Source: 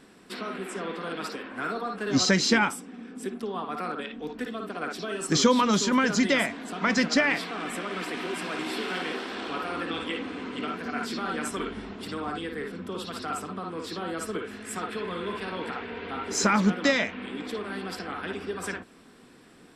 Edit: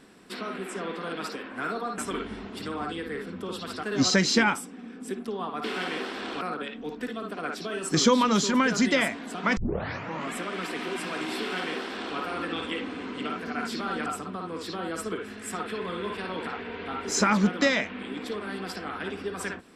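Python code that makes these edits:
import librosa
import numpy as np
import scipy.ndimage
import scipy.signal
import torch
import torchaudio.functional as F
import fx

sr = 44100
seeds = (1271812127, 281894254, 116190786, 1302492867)

y = fx.edit(x, sr, fx.tape_start(start_s=6.95, length_s=0.77),
    fx.duplicate(start_s=8.78, length_s=0.77, to_s=3.79),
    fx.move(start_s=11.44, length_s=1.85, to_s=1.98), tone=tone)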